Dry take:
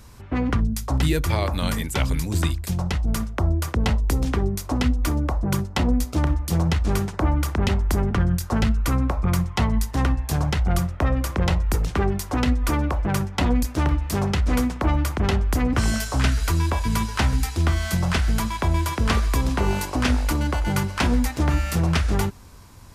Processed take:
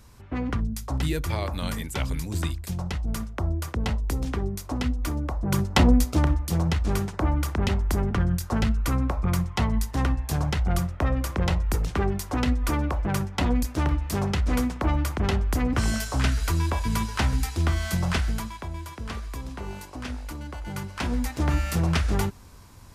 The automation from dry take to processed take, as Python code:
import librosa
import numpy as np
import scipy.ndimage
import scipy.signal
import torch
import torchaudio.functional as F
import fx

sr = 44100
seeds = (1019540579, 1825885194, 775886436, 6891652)

y = fx.gain(x, sr, db=fx.line((5.37, -5.5), (5.75, 4.5), (6.52, -3.0), (18.18, -3.0), (18.69, -13.5), (20.49, -13.5), (21.52, -2.5)))